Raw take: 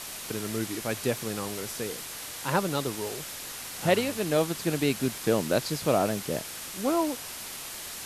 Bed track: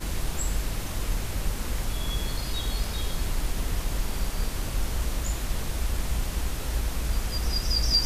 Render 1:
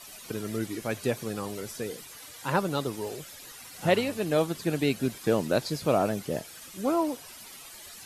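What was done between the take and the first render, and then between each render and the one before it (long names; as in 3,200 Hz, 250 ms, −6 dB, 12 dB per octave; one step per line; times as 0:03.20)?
broadband denoise 12 dB, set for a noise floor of −40 dBFS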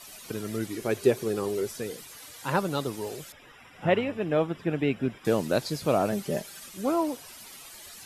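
0:00.79–0:01.68: parametric band 390 Hz +13 dB 0.42 octaves
0:03.32–0:05.25: Savitzky-Golay smoothing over 25 samples
0:06.12–0:06.69: comb filter 5.1 ms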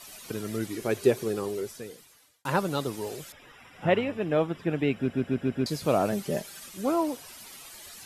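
0:01.20–0:02.45: fade out
0:04.96: stutter in place 0.14 s, 5 plays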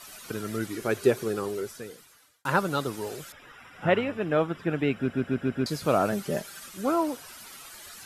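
parametric band 1,400 Hz +7 dB 0.55 octaves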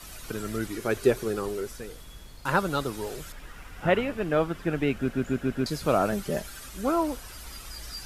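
mix in bed track −17.5 dB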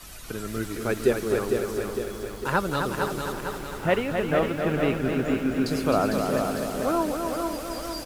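repeating echo 261 ms, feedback 50%, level −6 dB
feedback echo at a low word length 454 ms, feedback 55%, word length 8 bits, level −5.5 dB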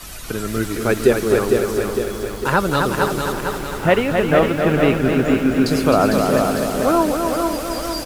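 level +8.5 dB
brickwall limiter −3 dBFS, peak gain reduction 2.5 dB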